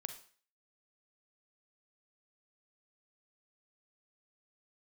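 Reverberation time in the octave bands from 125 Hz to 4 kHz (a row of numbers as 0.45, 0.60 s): 0.35, 0.40, 0.45, 0.45, 0.45, 0.45 s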